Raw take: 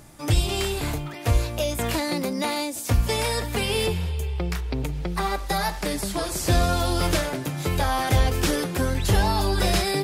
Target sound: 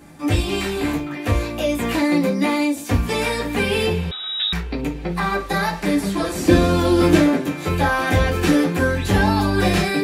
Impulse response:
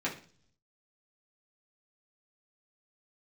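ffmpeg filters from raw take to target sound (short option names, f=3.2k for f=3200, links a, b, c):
-filter_complex "[0:a]asettb=1/sr,asplit=3[a][b][c];[a]atrim=end=6.384[d];[b]atrim=start=6.38:end=7.35,asetpts=PTS-STARTPTS,afade=t=in:d=0.004:c=qsin,afade=t=out:st=0.966:d=0.004:c=qsin,equalizer=f=290:w=1.8:g=11[e];[c]atrim=start=7.346[f];[d][e]acrossfade=d=0.004:c1=hsin:c2=qsin[g];[g][f]acrossfade=d=0.004:c1=qsin:c2=hsin[h];[1:a]atrim=start_sample=2205,atrim=end_sample=3528[i];[h][i]afir=irnorm=-1:irlink=0,asettb=1/sr,asplit=3[j][k][l];[j]atrim=end=4.114[m];[k]atrim=start=4.11:end=4.53,asetpts=PTS-STARTPTS,afade=t=in:d=0.004:c=qsin,afade=t=out:st=0.416:d=0.004:c=qsin,lowpass=f=3.3k:t=q:w=0.5098,lowpass=f=3.3k:t=q:w=0.6013,lowpass=f=3.3k:t=q:w=0.9,lowpass=f=3.3k:t=q:w=2.563,afreqshift=-3900[n];[l]atrim=start=4.526[o];[m][n]acrossfade=d=0.004:c1=hsin:c2=qsin[p];[p][o]acrossfade=d=0.004:c1=qsin:c2=hsin,volume=-1dB"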